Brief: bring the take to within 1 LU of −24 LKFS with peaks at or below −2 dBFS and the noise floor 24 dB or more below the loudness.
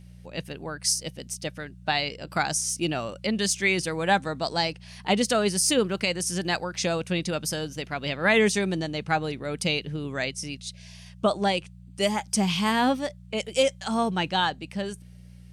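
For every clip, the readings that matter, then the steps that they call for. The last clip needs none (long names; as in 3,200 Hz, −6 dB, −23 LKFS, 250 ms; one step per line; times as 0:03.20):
mains hum 60 Hz; hum harmonics up to 180 Hz; level of the hum −43 dBFS; integrated loudness −26.5 LKFS; sample peak −10.5 dBFS; target loudness −24.0 LKFS
→ hum removal 60 Hz, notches 3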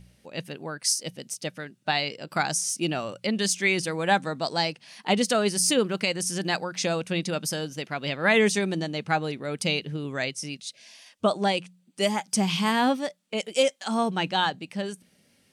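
mains hum none found; integrated loudness −26.5 LKFS; sample peak −10.5 dBFS; target loudness −24.0 LKFS
→ level +2.5 dB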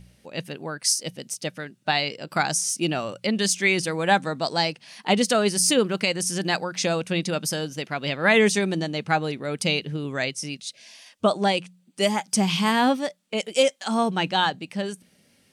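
integrated loudness −24.0 LKFS; sample peak −8.0 dBFS; background noise floor −62 dBFS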